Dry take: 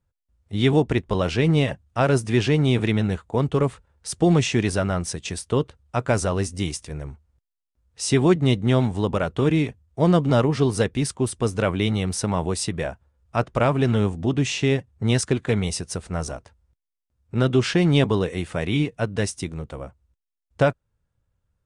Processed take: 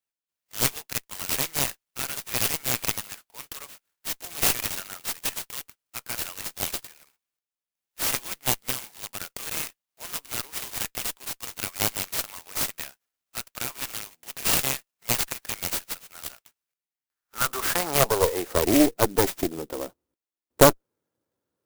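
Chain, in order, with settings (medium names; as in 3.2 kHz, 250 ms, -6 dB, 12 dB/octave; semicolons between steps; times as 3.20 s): high-pass sweep 2.9 kHz -> 320 Hz, 16.61–18.75 s; Chebyshev shaper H 6 -9 dB, 8 -20 dB, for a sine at -3 dBFS; sampling jitter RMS 0.097 ms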